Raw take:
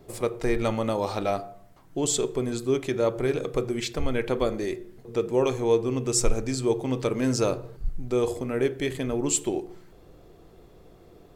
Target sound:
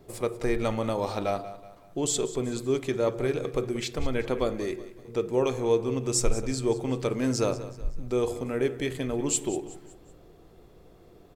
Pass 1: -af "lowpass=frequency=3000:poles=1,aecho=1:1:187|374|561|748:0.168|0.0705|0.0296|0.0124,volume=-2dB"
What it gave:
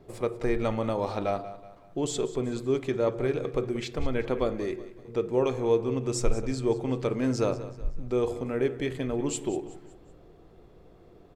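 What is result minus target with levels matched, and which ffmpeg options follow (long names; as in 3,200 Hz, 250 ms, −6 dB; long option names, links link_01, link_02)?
4,000 Hz band −3.5 dB
-af "aecho=1:1:187|374|561|748:0.168|0.0705|0.0296|0.0124,volume=-2dB"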